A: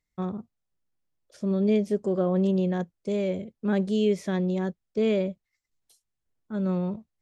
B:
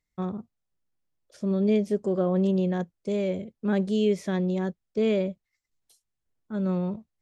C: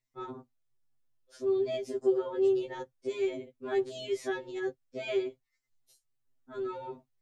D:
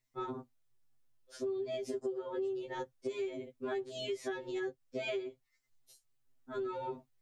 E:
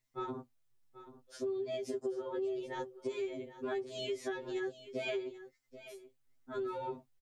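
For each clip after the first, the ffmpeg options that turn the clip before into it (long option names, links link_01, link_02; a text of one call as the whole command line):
ffmpeg -i in.wav -af anull out.wav
ffmpeg -i in.wav -af "afftfilt=real='re*2.45*eq(mod(b,6),0)':imag='im*2.45*eq(mod(b,6),0)':win_size=2048:overlap=0.75" out.wav
ffmpeg -i in.wav -af "acompressor=threshold=-37dB:ratio=12,volume=3dB" out.wav
ffmpeg -i in.wav -af "aecho=1:1:785:0.188" out.wav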